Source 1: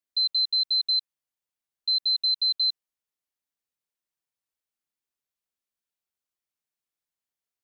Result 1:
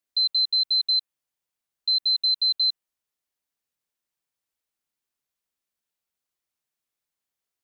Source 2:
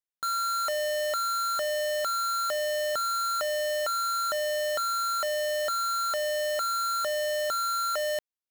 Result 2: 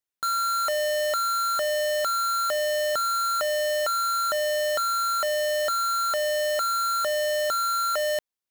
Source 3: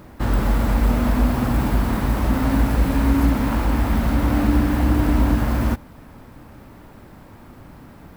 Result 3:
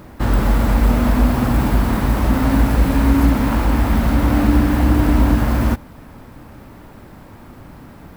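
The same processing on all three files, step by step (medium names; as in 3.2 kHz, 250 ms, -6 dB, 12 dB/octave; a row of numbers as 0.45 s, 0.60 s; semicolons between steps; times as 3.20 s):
dynamic bell 5.3 kHz, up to -3 dB, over -36 dBFS, Q 1.6; trim +3.5 dB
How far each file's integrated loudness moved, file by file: +2.0 LU, +3.5 LU, +3.5 LU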